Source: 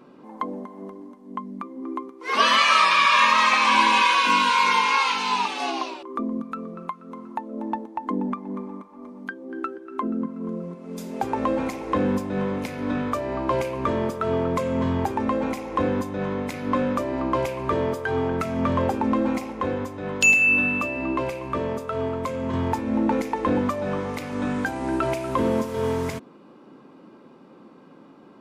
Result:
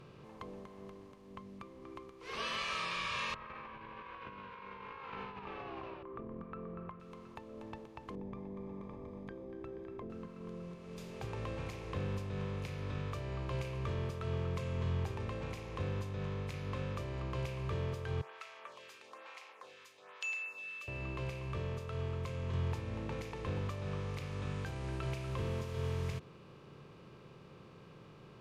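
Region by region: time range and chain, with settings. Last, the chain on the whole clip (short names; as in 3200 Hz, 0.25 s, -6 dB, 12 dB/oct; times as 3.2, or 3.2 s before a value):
3.34–7 LPF 1600 Hz 24 dB/oct + negative-ratio compressor -29 dBFS
8.15–10.1 running mean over 31 samples + echo 0.562 s -19.5 dB + fast leveller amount 70%
18.21–20.88 Bessel high-pass 1200 Hz, order 4 + photocell phaser 1.1 Hz
whole clip: per-bin compression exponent 0.6; EQ curve 140 Hz 0 dB, 260 Hz -24 dB, 400 Hz -11 dB, 800 Hz -21 dB, 2800 Hz -15 dB; gain -6 dB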